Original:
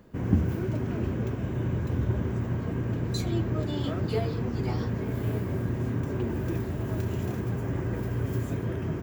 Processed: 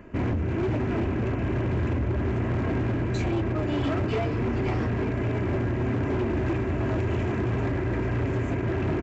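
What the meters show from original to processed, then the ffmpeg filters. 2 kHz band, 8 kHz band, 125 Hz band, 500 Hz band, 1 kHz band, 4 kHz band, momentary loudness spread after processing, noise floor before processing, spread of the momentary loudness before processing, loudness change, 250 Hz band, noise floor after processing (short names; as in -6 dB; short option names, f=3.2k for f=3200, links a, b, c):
+7.5 dB, n/a, +1.5 dB, +5.0 dB, +7.0 dB, +0.5 dB, 1 LU, -33 dBFS, 3 LU, +3.0 dB, +3.0 dB, -28 dBFS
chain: -af "highshelf=f=3.1k:t=q:w=3:g=-7,aecho=1:1:3:0.42,alimiter=limit=-21.5dB:level=0:latency=1:release=379,aresample=16000,asoftclip=type=hard:threshold=-30dB,aresample=44100,volume=7.5dB"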